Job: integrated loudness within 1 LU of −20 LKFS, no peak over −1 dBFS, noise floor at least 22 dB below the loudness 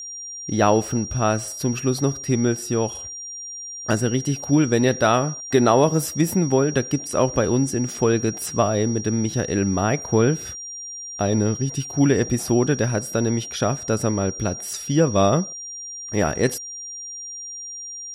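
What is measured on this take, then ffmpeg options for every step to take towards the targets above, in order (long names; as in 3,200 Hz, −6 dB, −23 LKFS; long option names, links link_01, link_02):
interfering tone 5,700 Hz; level of the tone −32 dBFS; integrated loudness −22.0 LKFS; sample peak −4.0 dBFS; target loudness −20.0 LKFS
→ -af "bandreject=frequency=5700:width=30"
-af "volume=2dB"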